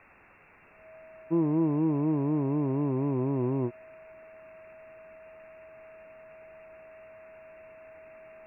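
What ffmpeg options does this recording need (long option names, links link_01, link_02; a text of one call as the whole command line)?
ffmpeg -i in.wav -af "bandreject=frequency=640:width=30,afwtdn=0.0035" out.wav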